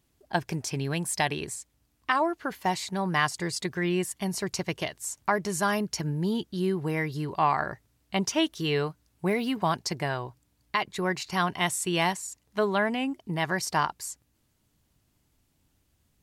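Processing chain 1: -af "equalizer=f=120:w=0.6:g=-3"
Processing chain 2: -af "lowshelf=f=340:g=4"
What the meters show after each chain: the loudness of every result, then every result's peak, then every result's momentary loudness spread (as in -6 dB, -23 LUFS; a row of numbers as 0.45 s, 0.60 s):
-29.5 LUFS, -27.5 LUFS; -10.5 dBFS, -10.5 dBFS; 8 LU, 8 LU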